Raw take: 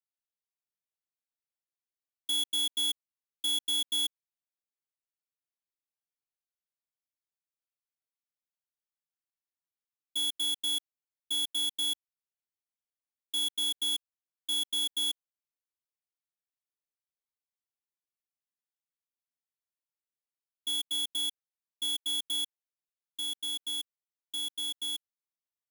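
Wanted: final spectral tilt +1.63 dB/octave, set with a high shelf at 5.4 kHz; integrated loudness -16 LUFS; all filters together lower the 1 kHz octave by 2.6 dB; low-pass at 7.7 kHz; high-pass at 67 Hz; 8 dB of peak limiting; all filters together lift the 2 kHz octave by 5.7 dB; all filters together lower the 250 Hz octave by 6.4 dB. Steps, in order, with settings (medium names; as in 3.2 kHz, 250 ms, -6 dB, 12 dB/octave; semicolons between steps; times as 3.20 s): high-pass 67 Hz; low-pass 7.7 kHz; peaking EQ 250 Hz -7.5 dB; peaking EQ 1 kHz -5 dB; peaking EQ 2 kHz +8 dB; treble shelf 5.4 kHz +6.5 dB; trim +18 dB; peak limiter -13 dBFS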